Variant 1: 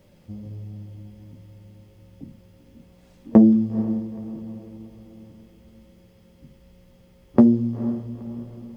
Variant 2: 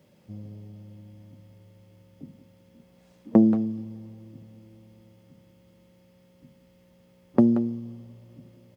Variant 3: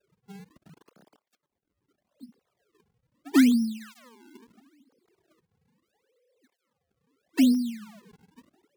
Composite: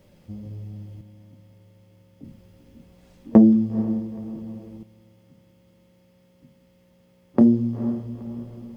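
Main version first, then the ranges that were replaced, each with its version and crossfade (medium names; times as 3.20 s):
1
1.01–2.24 s: from 2
4.83–7.41 s: from 2
not used: 3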